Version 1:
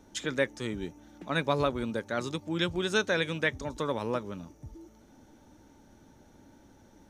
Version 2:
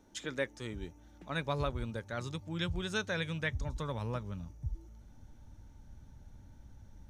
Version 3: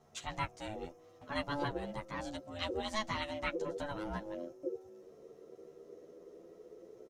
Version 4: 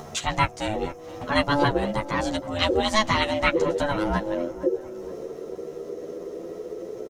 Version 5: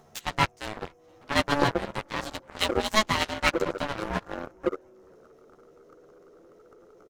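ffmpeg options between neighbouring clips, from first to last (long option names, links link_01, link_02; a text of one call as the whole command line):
ffmpeg -i in.wav -af "asubboost=boost=11.5:cutoff=100,volume=-6.5dB" out.wav
ffmpeg -i in.wav -filter_complex "[0:a]aeval=exprs='val(0)*sin(2*PI*430*n/s)':channel_layout=same,asplit=2[link_01][link_02];[link_02]adelay=10.7,afreqshift=0.38[link_03];[link_01][link_03]amix=inputs=2:normalize=1,volume=4dB" out.wav
ffmpeg -i in.wav -filter_complex "[0:a]asplit=2[link_01][link_02];[link_02]acompressor=mode=upward:threshold=-40dB:ratio=2.5,volume=3dB[link_03];[link_01][link_03]amix=inputs=2:normalize=0,asplit=2[link_04][link_05];[link_05]adelay=468,lowpass=frequency=2100:poles=1,volume=-17dB,asplit=2[link_06][link_07];[link_07]adelay=468,lowpass=frequency=2100:poles=1,volume=0.47,asplit=2[link_08][link_09];[link_09]adelay=468,lowpass=frequency=2100:poles=1,volume=0.47,asplit=2[link_10][link_11];[link_11]adelay=468,lowpass=frequency=2100:poles=1,volume=0.47[link_12];[link_04][link_06][link_08][link_10][link_12]amix=inputs=5:normalize=0,volume=7.5dB" out.wav
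ffmpeg -i in.wav -filter_complex "[0:a]asplit=2[link_01][link_02];[link_02]aeval=exprs='0.1*(abs(mod(val(0)/0.1+3,4)-2)-1)':channel_layout=same,volume=-10.5dB[link_03];[link_01][link_03]amix=inputs=2:normalize=0,aeval=exprs='0.473*(cos(1*acos(clip(val(0)/0.473,-1,1)))-cos(1*PI/2))+0.0299*(cos(2*acos(clip(val(0)/0.473,-1,1)))-cos(2*PI/2))+0.0841*(cos(3*acos(clip(val(0)/0.473,-1,1)))-cos(3*PI/2))+0.0376*(cos(7*acos(clip(val(0)/0.473,-1,1)))-cos(7*PI/2))+0.00335*(cos(8*acos(clip(val(0)/0.473,-1,1)))-cos(8*PI/2))':channel_layout=same,volume=3dB" out.wav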